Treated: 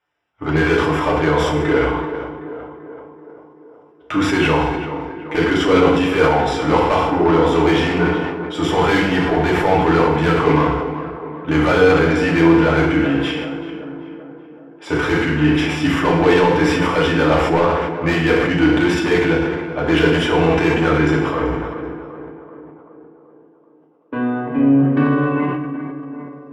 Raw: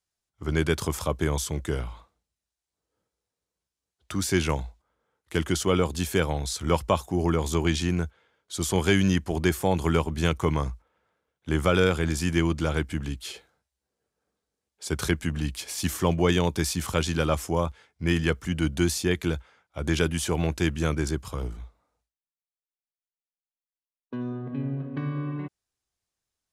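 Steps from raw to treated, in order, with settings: Savitzky-Golay filter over 25 samples; overdrive pedal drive 26 dB, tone 1.8 kHz, clips at -8 dBFS; on a send: tape echo 383 ms, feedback 65%, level -9 dB, low-pass 1.6 kHz; on the sum: FDN reverb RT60 0.89 s, low-frequency decay 0.9×, high-frequency decay 0.9×, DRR -3.5 dB; decay stretcher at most 35 dB/s; trim -2.5 dB

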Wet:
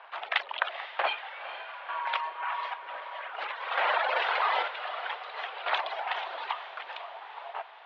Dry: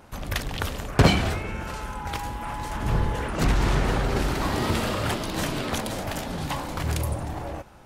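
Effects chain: square tremolo 0.53 Hz, depth 60%, duty 45%; reverb removal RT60 1.5 s; 0.54–1.94 s: distance through air 130 m; echo that smears into a reverb 474 ms, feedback 56%, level -11 dB; mistuned SSB +120 Hz 540–3400 Hz; 3.71–4.68 s: level flattener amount 50%; trim +4.5 dB

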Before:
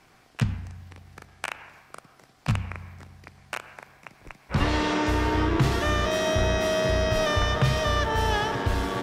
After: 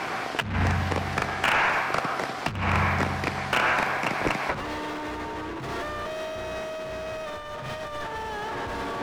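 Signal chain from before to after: overdrive pedal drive 36 dB, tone 1.3 kHz, clips at -11.5 dBFS; 7.22–8.13 s: flutter echo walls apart 6.9 m, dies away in 0.4 s; compressor with a negative ratio -25 dBFS, ratio -0.5; trim -1.5 dB

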